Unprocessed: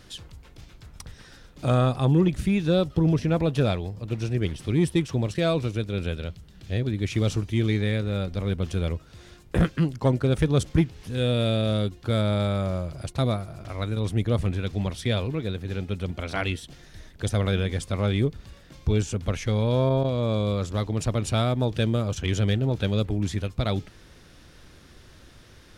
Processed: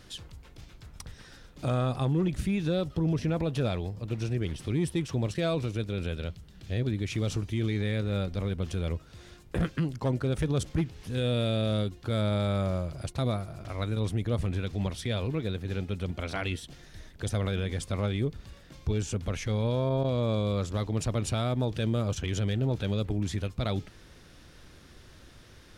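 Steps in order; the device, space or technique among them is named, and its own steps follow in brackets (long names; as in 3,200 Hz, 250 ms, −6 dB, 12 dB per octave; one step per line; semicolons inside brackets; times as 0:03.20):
clipper into limiter (hard clipping −13.5 dBFS, distortion −30 dB; brickwall limiter −18.5 dBFS, peak gain reduction 5 dB)
level −2 dB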